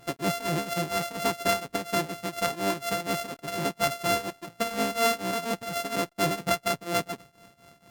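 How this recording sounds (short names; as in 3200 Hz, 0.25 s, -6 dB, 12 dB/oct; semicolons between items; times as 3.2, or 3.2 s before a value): a buzz of ramps at a fixed pitch in blocks of 64 samples; tremolo triangle 4.2 Hz, depth 90%; Opus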